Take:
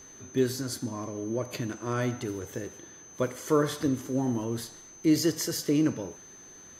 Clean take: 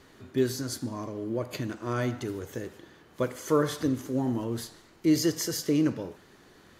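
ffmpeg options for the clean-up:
ffmpeg -i in.wav -af "bandreject=frequency=6200:width=30" out.wav

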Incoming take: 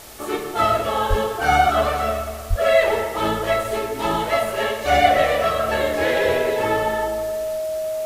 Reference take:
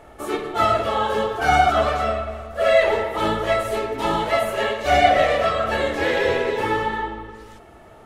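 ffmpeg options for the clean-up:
ffmpeg -i in.wav -filter_complex "[0:a]bandreject=frequency=630:width=30,asplit=3[link_01][link_02][link_03];[link_01]afade=type=out:start_time=1.09:duration=0.02[link_04];[link_02]highpass=frequency=140:width=0.5412,highpass=frequency=140:width=1.3066,afade=type=in:start_time=1.09:duration=0.02,afade=type=out:start_time=1.21:duration=0.02[link_05];[link_03]afade=type=in:start_time=1.21:duration=0.02[link_06];[link_04][link_05][link_06]amix=inputs=3:normalize=0,asplit=3[link_07][link_08][link_09];[link_07]afade=type=out:start_time=2.49:duration=0.02[link_10];[link_08]highpass=frequency=140:width=0.5412,highpass=frequency=140:width=1.3066,afade=type=in:start_time=2.49:duration=0.02,afade=type=out:start_time=2.61:duration=0.02[link_11];[link_09]afade=type=in:start_time=2.61:duration=0.02[link_12];[link_10][link_11][link_12]amix=inputs=3:normalize=0,afwtdn=0.0089" out.wav

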